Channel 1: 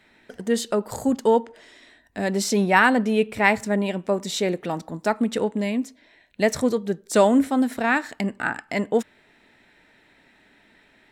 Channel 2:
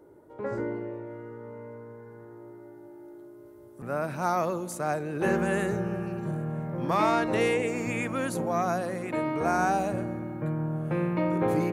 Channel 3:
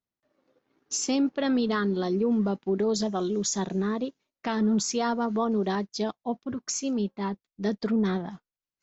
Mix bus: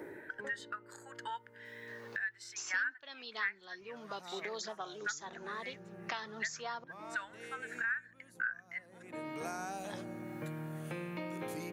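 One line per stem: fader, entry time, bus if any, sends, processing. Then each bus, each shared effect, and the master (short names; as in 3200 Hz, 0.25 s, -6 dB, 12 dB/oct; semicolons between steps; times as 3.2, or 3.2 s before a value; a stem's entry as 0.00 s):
+1.0 dB, 0.00 s, no send, ladder high-pass 1400 Hz, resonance 65%; high shelf 3900 Hz -8.5 dB; spectral expander 1.5:1
-20.0 dB, 0.00 s, no send, auto duck -13 dB, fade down 0.35 s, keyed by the first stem
-8.5 dB, 1.65 s, muted 6.84–9.84, no send, HPF 1000 Hz 12 dB/oct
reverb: off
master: three-band squash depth 100%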